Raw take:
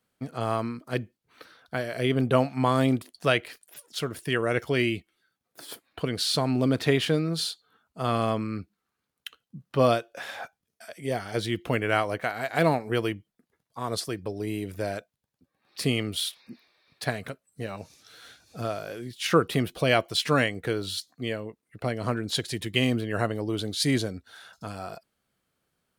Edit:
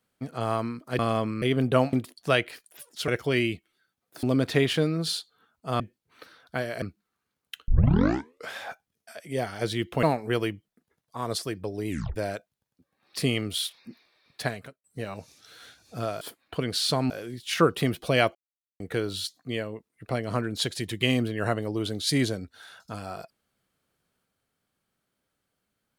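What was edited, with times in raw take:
0.99–2.01 s: swap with 8.12–8.55 s
2.52–2.90 s: delete
4.05–4.51 s: delete
5.66–6.55 s: move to 18.83 s
9.41 s: tape start 0.87 s
11.76–12.65 s: delete
14.51 s: tape stop 0.27 s
17.06–17.46 s: fade out linear
20.08–20.53 s: mute

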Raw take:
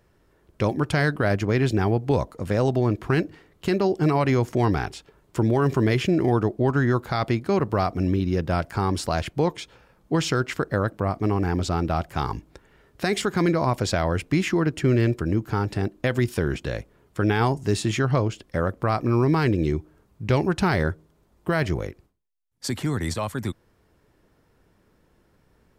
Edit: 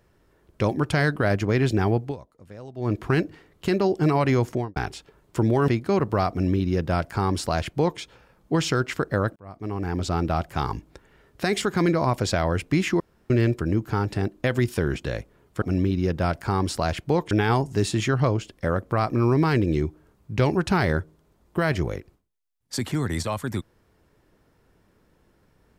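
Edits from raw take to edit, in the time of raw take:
1.99–2.93 s: dip -19 dB, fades 0.17 s
4.47–4.76 s: studio fade out
5.68–7.28 s: delete
7.91–9.60 s: copy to 17.22 s
10.96–11.77 s: fade in
14.60–14.90 s: room tone

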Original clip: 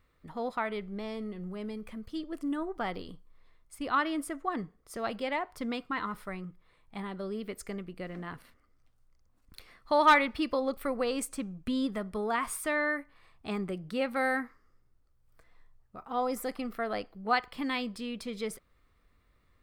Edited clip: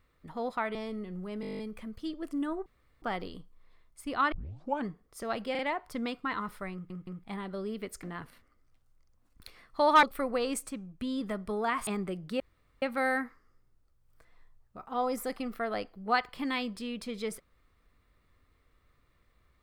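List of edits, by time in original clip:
0.75–1.03 s: delete
1.69 s: stutter 0.02 s, 10 plays
2.76 s: insert room tone 0.36 s
4.06 s: tape start 0.54 s
5.25 s: stutter 0.04 s, 3 plays
6.39 s: stutter in place 0.17 s, 3 plays
7.69–8.15 s: delete
10.15–10.69 s: delete
11.35–11.87 s: gain -3.5 dB
12.53–13.48 s: delete
14.01 s: insert room tone 0.42 s

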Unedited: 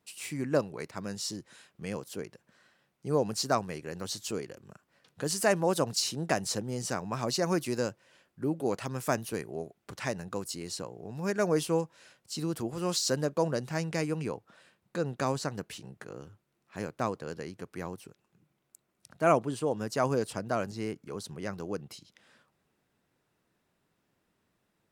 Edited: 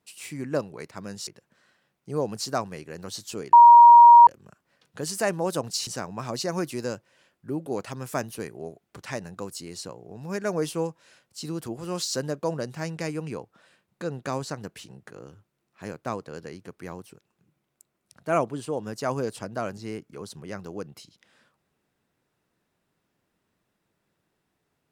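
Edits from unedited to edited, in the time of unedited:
1.27–2.24 s: delete
4.50 s: add tone 947 Hz -7 dBFS 0.74 s
6.10–6.81 s: delete

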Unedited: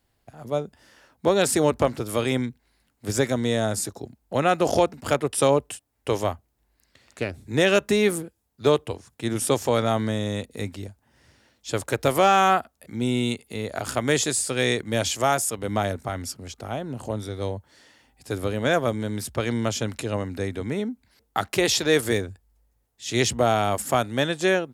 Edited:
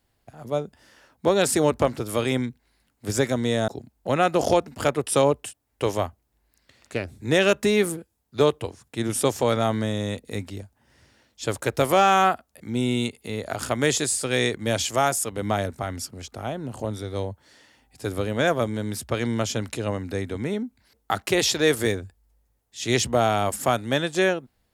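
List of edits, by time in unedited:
3.68–3.94 s: delete

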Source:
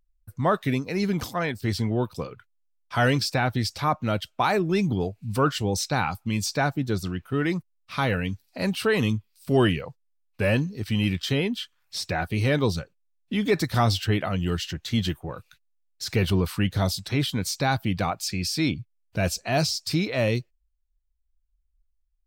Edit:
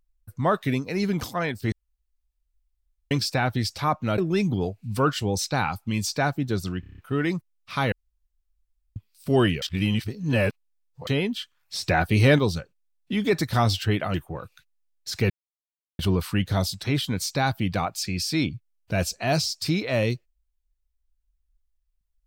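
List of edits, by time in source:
1.72–3.11 s: room tone
4.18–4.57 s: delete
7.19 s: stutter 0.03 s, 7 plays
8.13–9.17 s: room tone
9.83–11.28 s: reverse
12.04–12.60 s: gain +5.5 dB
14.35–15.08 s: delete
16.24 s: insert silence 0.69 s

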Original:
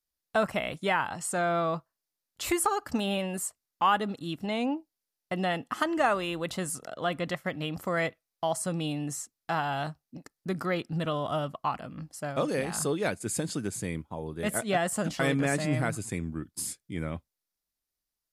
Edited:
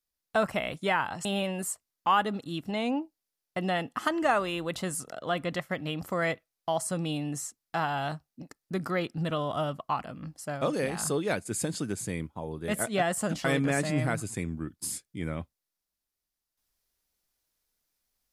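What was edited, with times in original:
1.25–3.00 s: delete

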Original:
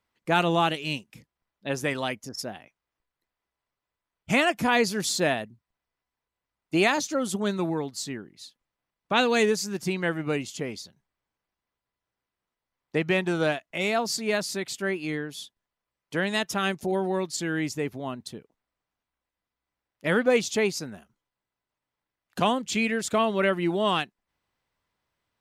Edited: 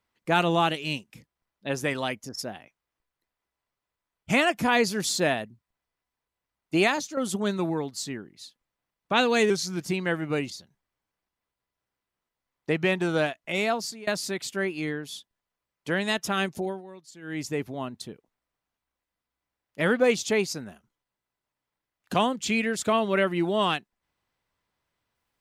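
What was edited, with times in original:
6.83–7.17 s: fade out, to -8.5 dB
9.50–9.78 s: speed 90%
10.47–10.76 s: delete
13.95–14.33 s: fade out, to -23 dB
16.81–17.74 s: dip -17.5 dB, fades 0.27 s

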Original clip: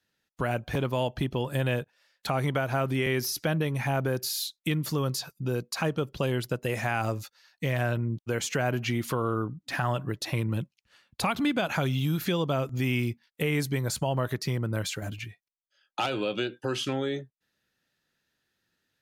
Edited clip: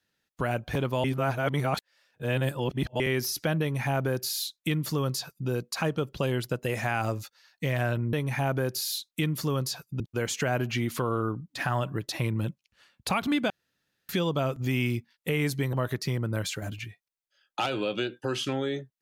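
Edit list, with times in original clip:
1.04–3.00 s: reverse
3.61–5.48 s: copy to 8.13 s
11.63–12.22 s: room tone
13.86–14.13 s: delete

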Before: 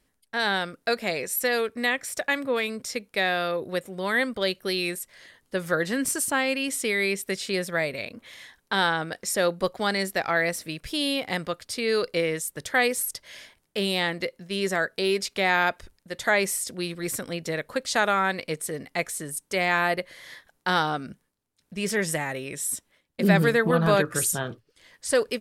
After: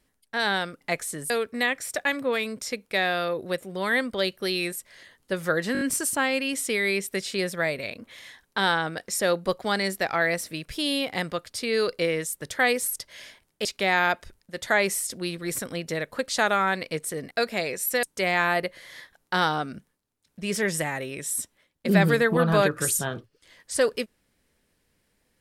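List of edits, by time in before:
0.81–1.53 s: swap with 18.88–19.37 s
5.96 s: stutter 0.02 s, 5 plays
13.80–15.22 s: delete

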